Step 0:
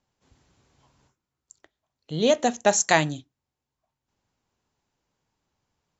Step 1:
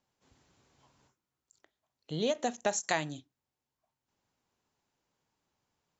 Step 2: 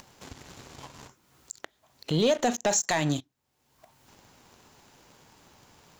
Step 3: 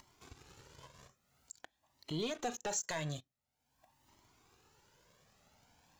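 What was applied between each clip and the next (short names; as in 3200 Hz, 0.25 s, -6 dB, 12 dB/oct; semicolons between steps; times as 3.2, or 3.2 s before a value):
low shelf 100 Hz -9 dB; compressor 2:1, threshold -30 dBFS, peak gain reduction 9.5 dB; ending taper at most 450 dB/s; gain -2.5 dB
upward compressor, threshold -43 dBFS; sample leveller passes 2; limiter -24 dBFS, peak gain reduction 10 dB; gain +7.5 dB
cascading flanger rising 0.48 Hz; gain -7 dB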